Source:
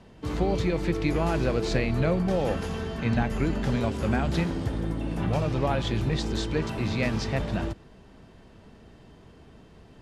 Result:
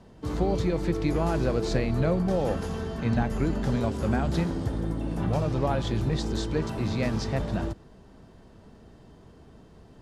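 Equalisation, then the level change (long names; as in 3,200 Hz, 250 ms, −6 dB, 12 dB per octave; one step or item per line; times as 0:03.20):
parametric band 2,500 Hz −6.5 dB 1.1 octaves
0.0 dB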